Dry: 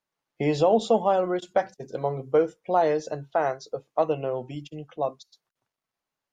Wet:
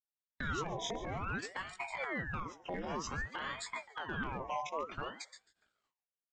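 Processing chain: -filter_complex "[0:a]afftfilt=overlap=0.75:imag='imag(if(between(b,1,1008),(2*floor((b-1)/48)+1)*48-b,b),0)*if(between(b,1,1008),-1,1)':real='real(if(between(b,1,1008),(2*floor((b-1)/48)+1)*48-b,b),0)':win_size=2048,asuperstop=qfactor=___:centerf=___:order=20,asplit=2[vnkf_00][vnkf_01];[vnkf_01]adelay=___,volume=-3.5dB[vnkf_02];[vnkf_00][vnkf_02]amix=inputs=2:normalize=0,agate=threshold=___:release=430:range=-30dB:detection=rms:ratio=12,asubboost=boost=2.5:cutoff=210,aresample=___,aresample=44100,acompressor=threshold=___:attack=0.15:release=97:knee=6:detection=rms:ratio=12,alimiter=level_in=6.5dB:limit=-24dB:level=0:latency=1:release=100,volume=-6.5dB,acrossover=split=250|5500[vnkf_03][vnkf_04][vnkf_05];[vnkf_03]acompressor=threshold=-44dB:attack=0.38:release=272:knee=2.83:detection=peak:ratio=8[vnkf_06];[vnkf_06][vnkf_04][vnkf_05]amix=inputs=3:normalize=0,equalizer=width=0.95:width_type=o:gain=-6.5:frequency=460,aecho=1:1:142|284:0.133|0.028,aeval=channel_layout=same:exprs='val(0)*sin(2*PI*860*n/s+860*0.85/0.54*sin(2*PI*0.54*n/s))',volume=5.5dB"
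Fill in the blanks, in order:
3.4, 4300, 18, -52dB, 16000, -29dB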